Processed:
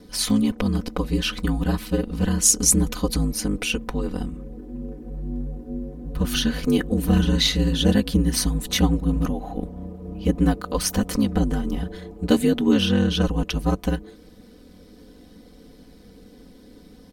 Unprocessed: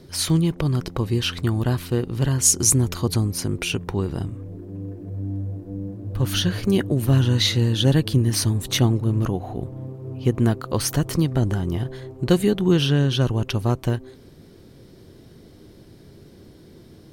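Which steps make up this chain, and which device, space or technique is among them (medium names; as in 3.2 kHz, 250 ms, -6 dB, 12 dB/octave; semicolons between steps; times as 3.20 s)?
ring-modulated robot voice (ring modulator 51 Hz; comb 4 ms, depth 98%)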